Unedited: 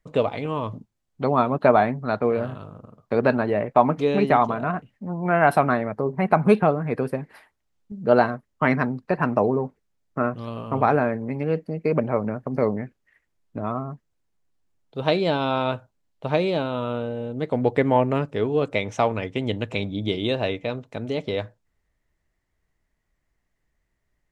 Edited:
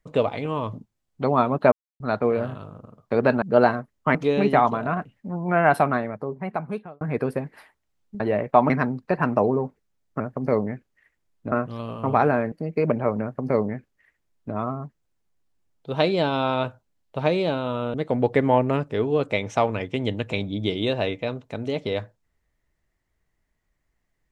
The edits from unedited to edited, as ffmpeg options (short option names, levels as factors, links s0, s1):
-filter_complex "[0:a]asplit=12[s0][s1][s2][s3][s4][s5][s6][s7][s8][s9][s10][s11];[s0]atrim=end=1.72,asetpts=PTS-STARTPTS,afade=t=out:st=1.716:d=0.004:c=hsin[s12];[s1]atrim=start=1.72:end=2,asetpts=PTS-STARTPTS,volume=0[s13];[s2]atrim=start=2:end=3.422,asetpts=PTS-STARTPTS,afade=t=in:d=0.004:c=hsin[s14];[s3]atrim=start=7.968:end=8.702[s15];[s4]atrim=start=3.918:end=6.78,asetpts=PTS-STARTPTS,afade=t=out:st=1.482:d=1.38[s16];[s5]atrim=start=6.78:end=7.972,asetpts=PTS-STARTPTS,afade=t=in:d=0.004:c=hsin[s17];[s6]atrim=start=3.418:end=3.922[s18];[s7]atrim=start=8.698:end=10.202[s19];[s8]atrim=start=12.298:end=13.622[s20];[s9]atrim=start=10.198:end=11.202[s21];[s10]atrim=start=11.598:end=17.022[s22];[s11]atrim=start=17.358[s23];[s12][s13][s14]concat=n=3:v=0:a=1[s24];[s24][s15]acrossfade=d=0.004:c1=hsin:c2=hsin[s25];[s16][s17]concat=n=2:v=0:a=1[s26];[s25][s26]acrossfade=d=0.004:c1=hsin:c2=hsin[s27];[s27][s18]acrossfade=d=0.004:c1=hsin:c2=hsin[s28];[s28][s19]acrossfade=d=0.004:c1=hsin:c2=hsin[s29];[s29][s20]acrossfade=d=0.004:c1=hsin:c2=hsin[s30];[s30][s21]acrossfade=d=0.004:c1=hsin:c2=hsin[s31];[s31][s22]acrossfade=d=0.004:c1=hsin:c2=hsin[s32];[s32][s23]acrossfade=d=0.004:c1=hsin:c2=hsin"